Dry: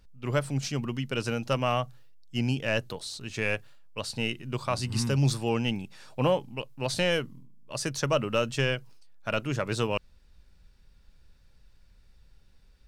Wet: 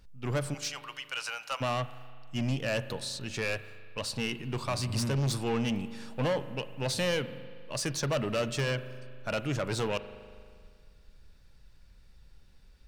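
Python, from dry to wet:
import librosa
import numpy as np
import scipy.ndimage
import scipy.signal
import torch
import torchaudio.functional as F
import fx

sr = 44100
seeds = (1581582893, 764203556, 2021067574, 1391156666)

y = fx.highpass(x, sr, hz=800.0, slope=24, at=(0.53, 1.6), fade=0.02)
y = 10.0 ** (-26.5 / 20.0) * np.tanh(y / 10.0 ** (-26.5 / 20.0))
y = fx.rev_spring(y, sr, rt60_s=2.0, pass_ms=(39,), chirp_ms=55, drr_db=13.0)
y = y * 10.0 ** (1.5 / 20.0)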